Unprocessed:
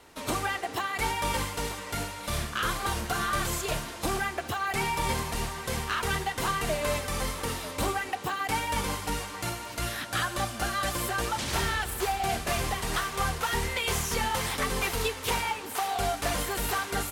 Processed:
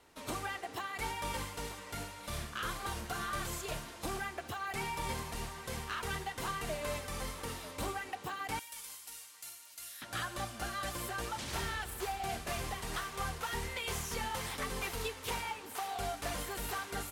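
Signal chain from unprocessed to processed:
0:08.59–0:10.02: first-order pre-emphasis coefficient 0.97
level −9 dB

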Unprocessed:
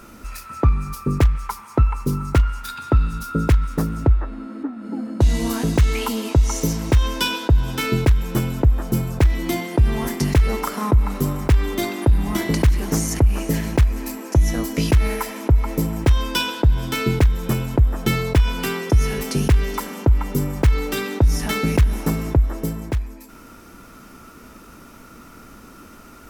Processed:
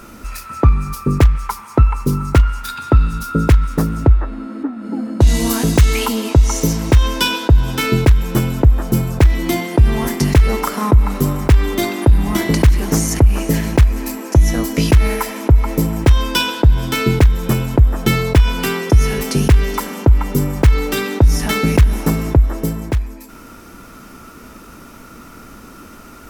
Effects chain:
0:05.27–0:06.06: high-shelf EQ 4,600 Hz +6.5 dB
level +5 dB

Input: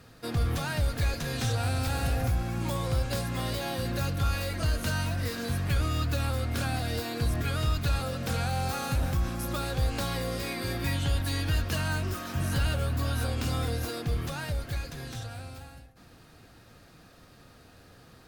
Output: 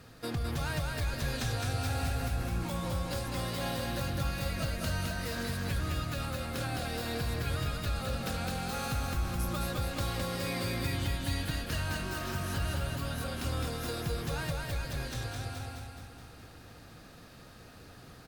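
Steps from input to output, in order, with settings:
downward compressor 3 to 1, threshold −33 dBFS, peak gain reduction 8 dB
on a send: repeating echo 211 ms, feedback 56%, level −3 dB

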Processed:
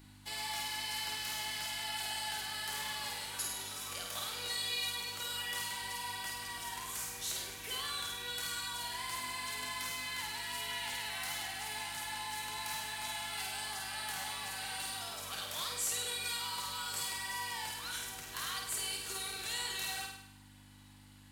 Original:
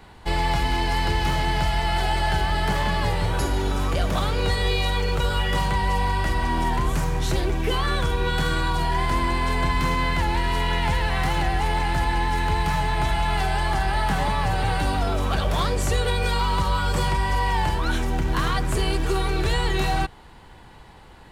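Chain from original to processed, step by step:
first difference
hum with harmonics 50 Hz, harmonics 6, −55 dBFS −2 dB per octave
flutter between parallel walls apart 8.8 metres, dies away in 0.74 s
level −3 dB

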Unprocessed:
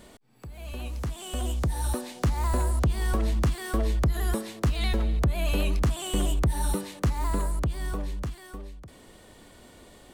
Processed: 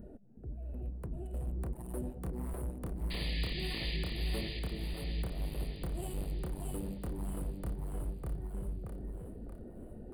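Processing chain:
adaptive Wiener filter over 41 samples
on a send at −23 dB: convolution reverb RT60 0.95 s, pre-delay 3 ms
on the sum: flanger 1.8 Hz, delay 0.6 ms, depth 5.5 ms, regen −18%
notch filter 3,500 Hz
hard clipping −33.5 dBFS, distortion −7 dB
drawn EQ curve 490 Hz 0 dB, 6,600 Hz −16 dB, 9,500 Hz +4 dB
reversed playback
downward compressor 6 to 1, threshold −46 dBFS, peak gain reduction 10.5 dB
reversed playback
sound drawn into the spectrogram noise, 0:03.10–0:03.97, 1,700–4,900 Hz −50 dBFS
echo with a time of its own for lows and highs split 410 Hz, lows 372 ms, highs 629 ms, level −3 dB
level +7 dB

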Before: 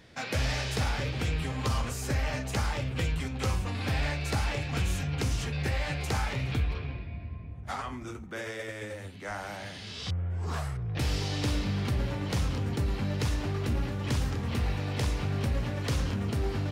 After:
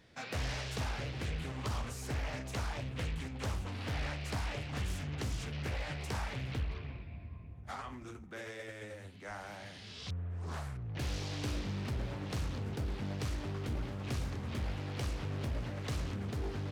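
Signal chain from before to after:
highs frequency-modulated by the lows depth 0.69 ms
level −7.5 dB

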